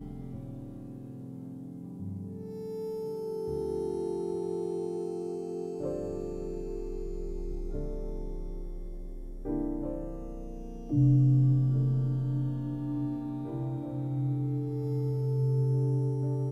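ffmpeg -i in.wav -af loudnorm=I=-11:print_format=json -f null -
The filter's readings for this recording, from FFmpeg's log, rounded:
"input_i" : "-31.6",
"input_tp" : "-14.8",
"input_lra" : "9.9",
"input_thresh" : "-42.2",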